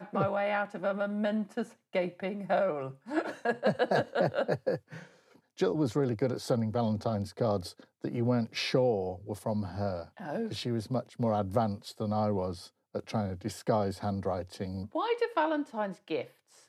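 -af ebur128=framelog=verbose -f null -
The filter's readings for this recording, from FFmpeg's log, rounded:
Integrated loudness:
  I:         -32.1 LUFS
  Threshold: -42.3 LUFS
Loudness range:
  LRA:         2.1 LU
  Threshold: -52.2 LUFS
  LRA low:   -33.3 LUFS
  LRA high:  -31.2 LUFS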